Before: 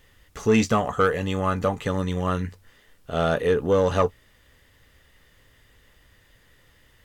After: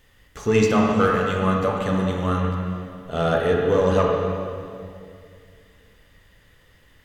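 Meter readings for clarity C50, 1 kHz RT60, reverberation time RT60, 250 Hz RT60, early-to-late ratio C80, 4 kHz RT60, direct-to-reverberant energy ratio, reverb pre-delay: 0.5 dB, 2.2 s, 2.3 s, 2.7 s, 2.0 dB, 2.1 s, -0.5 dB, 27 ms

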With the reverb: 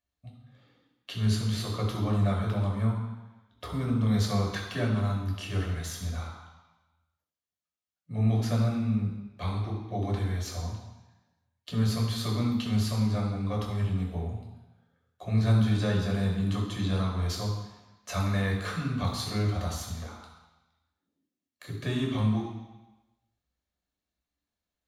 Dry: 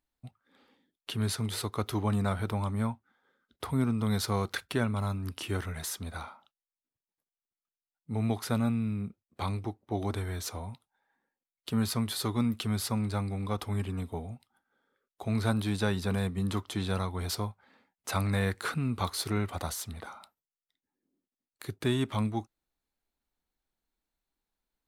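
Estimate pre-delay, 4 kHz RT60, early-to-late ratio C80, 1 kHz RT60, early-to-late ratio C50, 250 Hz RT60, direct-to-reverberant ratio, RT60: 3 ms, 1.1 s, 6.5 dB, 1.1 s, 4.0 dB, 1.0 s, -1.5 dB, 1.1 s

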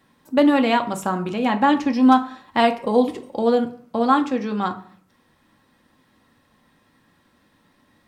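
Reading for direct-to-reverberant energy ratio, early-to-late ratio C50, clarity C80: 5.0 dB, 14.5 dB, 18.0 dB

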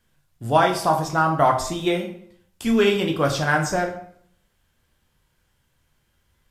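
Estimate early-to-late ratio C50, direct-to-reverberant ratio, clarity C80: 9.0 dB, 2.5 dB, 12.0 dB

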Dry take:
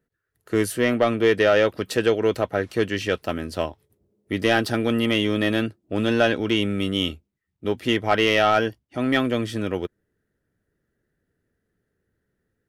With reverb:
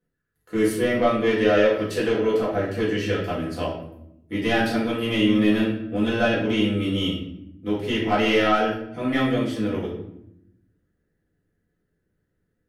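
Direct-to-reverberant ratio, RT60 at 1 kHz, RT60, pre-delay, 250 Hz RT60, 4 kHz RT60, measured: -8.5 dB, 0.70 s, 0.80 s, 4 ms, 1.3 s, 0.55 s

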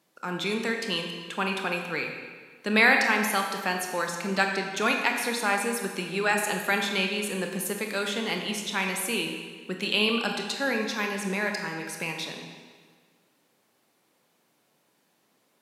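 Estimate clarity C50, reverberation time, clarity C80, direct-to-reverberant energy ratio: 4.0 dB, 1.6 s, 5.5 dB, 2.5 dB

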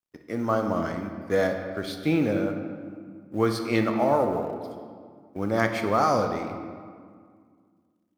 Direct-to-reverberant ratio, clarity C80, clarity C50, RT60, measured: 5.0 dB, 7.5 dB, 6.5 dB, 2.0 s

